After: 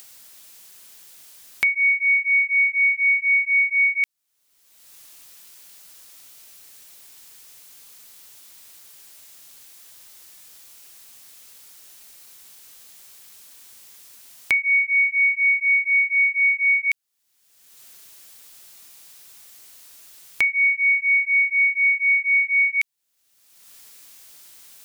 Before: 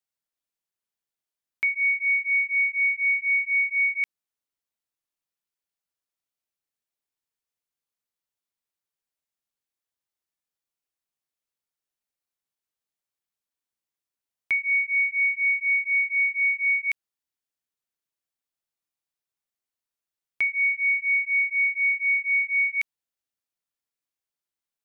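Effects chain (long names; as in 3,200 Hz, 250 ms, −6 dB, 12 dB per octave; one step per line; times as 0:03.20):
high-shelf EQ 2,500 Hz +10 dB
upward compression, threshold −20 dBFS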